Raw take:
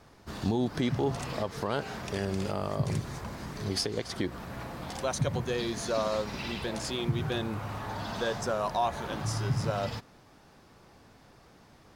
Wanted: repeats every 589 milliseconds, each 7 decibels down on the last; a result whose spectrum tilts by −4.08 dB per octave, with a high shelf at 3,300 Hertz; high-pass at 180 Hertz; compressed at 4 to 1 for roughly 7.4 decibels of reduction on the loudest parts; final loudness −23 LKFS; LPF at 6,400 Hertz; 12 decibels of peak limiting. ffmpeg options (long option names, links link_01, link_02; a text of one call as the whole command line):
ffmpeg -i in.wav -af "highpass=180,lowpass=6400,highshelf=frequency=3300:gain=5,acompressor=threshold=-34dB:ratio=4,alimiter=level_in=9dB:limit=-24dB:level=0:latency=1,volume=-9dB,aecho=1:1:589|1178|1767|2356|2945:0.447|0.201|0.0905|0.0407|0.0183,volume=18.5dB" out.wav